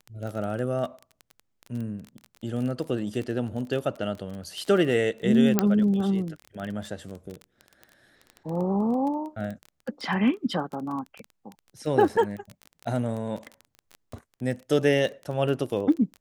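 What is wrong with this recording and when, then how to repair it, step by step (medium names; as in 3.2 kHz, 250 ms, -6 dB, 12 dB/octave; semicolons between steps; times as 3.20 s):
crackle 21 per s -31 dBFS
5.59 s: pop -5 dBFS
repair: de-click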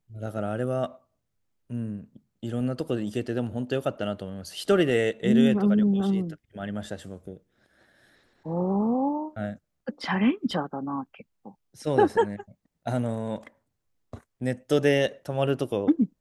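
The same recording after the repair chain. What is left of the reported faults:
nothing left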